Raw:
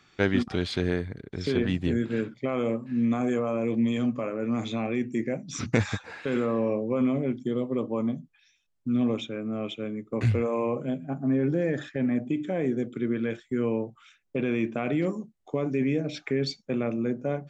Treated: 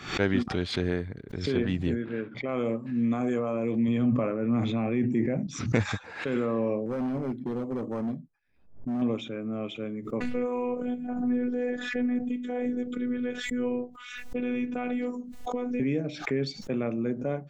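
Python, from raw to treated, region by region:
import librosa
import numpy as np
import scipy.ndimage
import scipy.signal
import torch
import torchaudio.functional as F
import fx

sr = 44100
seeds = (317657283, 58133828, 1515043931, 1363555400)

y = fx.chain(x, sr, fx.lowpass(hz=2700.0, slope=12),
    fx.low_shelf(hz=290.0, db=-7.5), at=(1.95, 2.49))
y = fx.chain(y, sr, fx.bass_treble(bass_db=5, treble_db=-11),
    fx.sustainer(db_per_s=34.0), at=(3.88, 5.47))
y = fx.chain(y, sr, fx.env_lowpass(base_hz=560.0, full_db=-21.0),
    fx.overload_stage(gain_db=25.5),
    fx.resample_linear(factor=6), at=(6.86, 9.02))
y = fx.chain(y, sr, fx.robotise(hz=246.0),
    fx.pre_swell(db_per_s=46.0), at=(10.2, 15.8))
y = fx.high_shelf(y, sr, hz=3800.0, db=-5.0)
y = fx.pre_swell(y, sr, db_per_s=110.0)
y = y * librosa.db_to_amplitude(-1.5)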